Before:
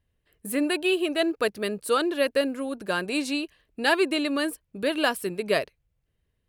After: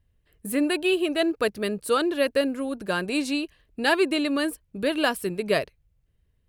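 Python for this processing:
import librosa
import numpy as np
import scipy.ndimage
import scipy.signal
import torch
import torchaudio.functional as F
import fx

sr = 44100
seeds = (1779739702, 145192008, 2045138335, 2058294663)

y = fx.low_shelf(x, sr, hz=150.0, db=9.0)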